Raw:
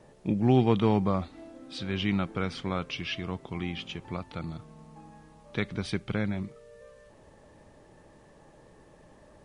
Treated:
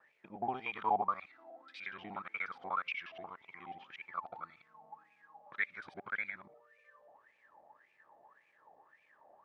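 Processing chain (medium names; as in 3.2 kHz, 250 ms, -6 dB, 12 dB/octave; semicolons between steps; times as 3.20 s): time reversed locally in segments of 60 ms; wah-wah 1.8 Hz 710–2400 Hz, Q 13; trim +10 dB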